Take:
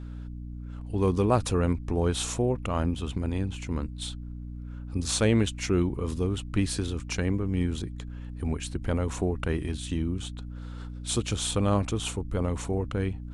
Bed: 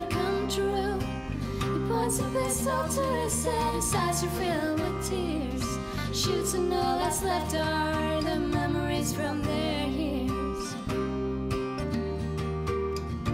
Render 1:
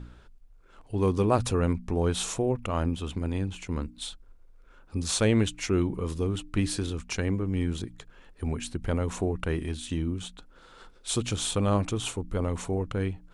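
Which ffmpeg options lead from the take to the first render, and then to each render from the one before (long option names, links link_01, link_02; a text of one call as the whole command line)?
ffmpeg -i in.wav -af "bandreject=frequency=60:width_type=h:width=4,bandreject=frequency=120:width_type=h:width=4,bandreject=frequency=180:width_type=h:width=4,bandreject=frequency=240:width_type=h:width=4,bandreject=frequency=300:width_type=h:width=4" out.wav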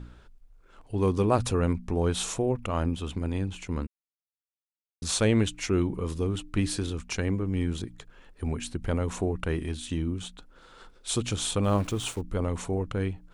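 ffmpeg -i in.wav -filter_complex "[0:a]asplit=3[link_01][link_02][link_03];[link_01]afade=type=out:start_time=11.63:duration=0.02[link_04];[link_02]aeval=exprs='val(0)*gte(abs(val(0)),0.0075)':channel_layout=same,afade=type=in:start_time=11.63:duration=0.02,afade=type=out:start_time=12.2:duration=0.02[link_05];[link_03]afade=type=in:start_time=12.2:duration=0.02[link_06];[link_04][link_05][link_06]amix=inputs=3:normalize=0,asplit=3[link_07][link_08][link_09];[link_07]atrim=end=3.87,asetpts=PTS-STARTPTS,afade=type=out:start_time=3.866:duration=0.004:curve=hsin[link_10];[link_08]atrim=start=3.87:end=5.02,asetpts=PTS-STARTPTS,volume=0[link_11];[link_09]atrim=start=5.02,asetpts=PTS-STARTPTS,afade=type=in:duration=0.004:curve=hsin[link_12];[link_10][link_11][link_12]concat=n=3:v=0:a=1" out.wav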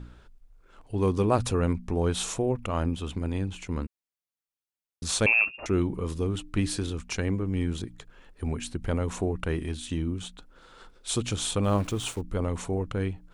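ffmpeg -i in.wav -filter_complex "[0:a]asettb=1/sr,asplit=3[link_01][link_02][link_03];[link_01]atrim=end=5.264[link_04];[link_02]atrim=start=5.26:end=5.66,asetpts=PTS-STARTPTS,afade=type=in:duration=0.004:curve=qsin,afade=type=out:start_time=0.396:duration=0.004:curve=qsin,lowpass=frequency=2400:width_type=q:width=0.5098,lowpass=frequency=2400:width_type=q:width=0.6013,lowpass=frequency=2400:width_type=q:width=0.9,lowpass=frequency=2400:width_type=q:width=2.563,afreqshift=-2800[link_05];[link_03]atrim=start=5.656[link_06];[link_04][link_05]acrossfade=duration=0.004:curve1=hsin:curve2=qsin[link_07];[link_07][link_06]acrossfade=duration=0.004:curve1=qsin:curve2=hsin" out.wav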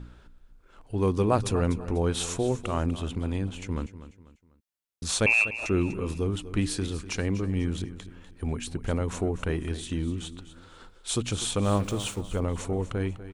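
ffmpeg -i in.wav -af "aecho=1:1:246|492|738:0.2|0.0718|0.0259" out.wav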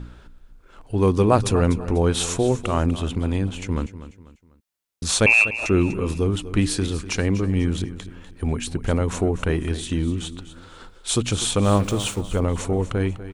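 ffmpeg -i in.wav -af "volume=6.5dB" out.wav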